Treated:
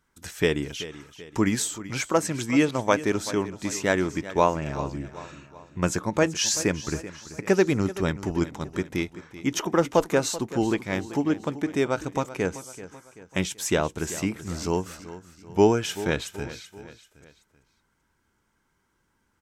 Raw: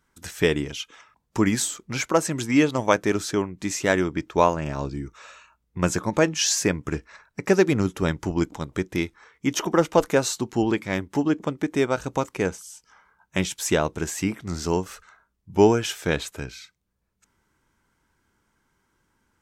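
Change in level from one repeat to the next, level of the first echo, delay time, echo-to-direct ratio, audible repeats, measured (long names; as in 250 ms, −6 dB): −6.5 dB, −15.0 dB, 384 ms, −14.0 dB, 3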